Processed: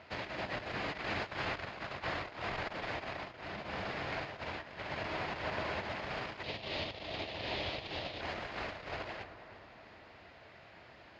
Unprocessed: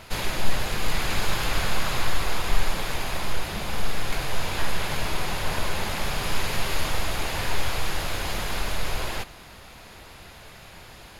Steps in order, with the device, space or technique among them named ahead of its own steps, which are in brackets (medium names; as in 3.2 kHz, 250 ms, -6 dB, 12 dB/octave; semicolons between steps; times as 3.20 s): analogue delay pedal into a guitar amplifier (bucket-brigade echo 314 ms, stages 4096, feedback 52%, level -12 dB; valve stage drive 14 dB, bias 0.65; cabinet simulation 95–4400 Hz, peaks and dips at 160 Hz -4 dB, 300 Hz +4 dB, 640 Hz +6 dB, 1.9 kHz +4 dB, 3.6 kHz -5 dB); 6.43–8.21 s: FFT filter 630 Hz 0 dB, 1.5 kHz -9 dB, 3.6 kHz +8 dB, 9.1 kHz -8 dB; trim -7 dB